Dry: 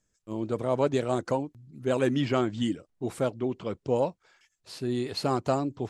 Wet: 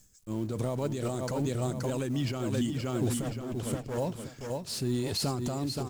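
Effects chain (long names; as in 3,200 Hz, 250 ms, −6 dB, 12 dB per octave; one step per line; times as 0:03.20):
mu-law and A-law mismatch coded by mu
bass and treble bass +9 dB, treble +12 dB
0:03.22–0:03.98: tube saturation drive 28 dB, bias 0.75
on a send: repeating echo 525 ms, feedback 34%, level −6.5 dB
on the sum: brickwall limiter −18.5 dBFS, peak gain reduction 9.5 dB
amplitude modulation by smooth noise, depth 65%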